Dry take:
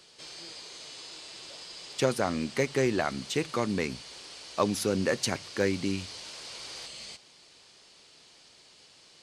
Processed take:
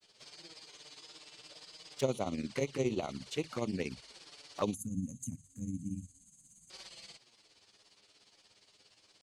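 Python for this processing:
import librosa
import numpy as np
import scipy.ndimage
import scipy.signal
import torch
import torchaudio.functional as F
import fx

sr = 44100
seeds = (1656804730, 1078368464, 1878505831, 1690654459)

y = fx.env_flanger(x, sr, rest_ms=11.1, full_db=-24.5)
y = fx.granulator(y, sr, seeds[0], grain_ms=90.0, per_s=17.0, spray_ms=12.0, spread_st=0)
y = fx.spec_box(y, sr, start_s=4.74, length_s=1.96, low_hz=280.0, high_hz=6200.0, gain_db=-30)
y = y * librosa.db_to_amplitude(-3.0)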